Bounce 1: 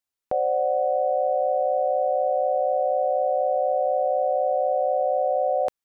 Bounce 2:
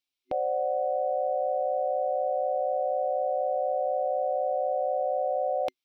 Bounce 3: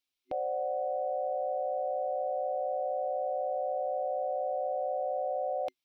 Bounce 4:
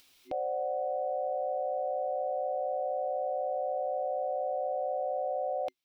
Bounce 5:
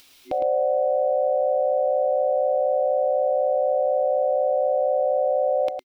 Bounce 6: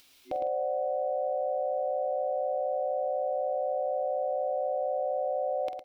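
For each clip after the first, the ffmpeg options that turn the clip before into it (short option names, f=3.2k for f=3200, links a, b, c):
-af "superequalizer=6b=2:12b=3.55:13b=3.98:14b=2.51,volume=-5dB"
-af "alimiter=level_in=1.5dB:limit=-24dB:level=0:latency=1:release=25,volume=-1.5dB"
-af "acompressor=mode=upward:threshold=-43dB:ratio=2.5"
-af "aecho=1:1:109:0.447,volume=9dB"
-filter_complex "[0:a]asplit=2[a][b];[b]adelay=47,volume=-11dB[c];[a][c]amix=inputs=2:normalize=0,volume=-7dB"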